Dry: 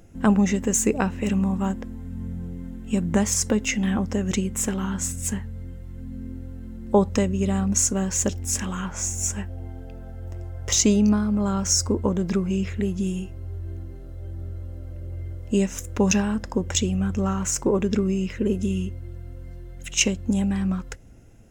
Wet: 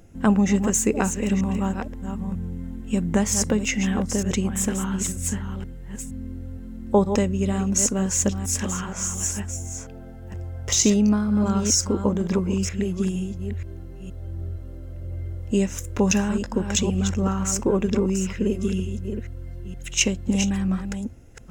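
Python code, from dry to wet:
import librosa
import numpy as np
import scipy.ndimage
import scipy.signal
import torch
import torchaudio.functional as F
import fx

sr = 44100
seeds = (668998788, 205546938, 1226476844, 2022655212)

y = fx.reverse_delay(x, sr, ms=470, wet_db=-8.0)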